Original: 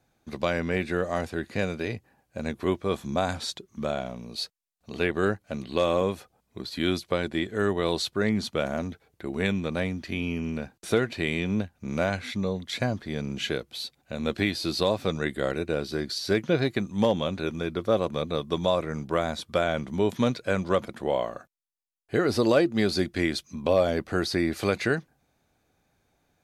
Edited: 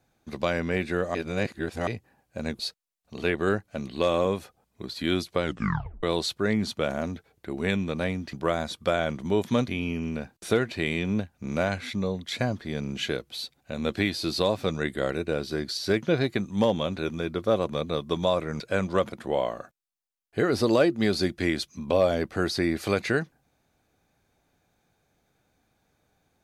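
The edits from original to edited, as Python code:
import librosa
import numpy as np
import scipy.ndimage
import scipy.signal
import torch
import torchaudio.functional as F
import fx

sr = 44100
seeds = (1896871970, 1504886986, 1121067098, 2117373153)

y = fx.edit(x, sr, fx.reverse_span(start_s=1.15, length_s=0.72),
    fx.cut(start_s=2.59, length_s=1.76),
    fx.tape_stop(start_s=7.19, length_s=0.6),
    fx.move(start_s=19.01, length_s=1.35, to_s=10.09), tone=tone)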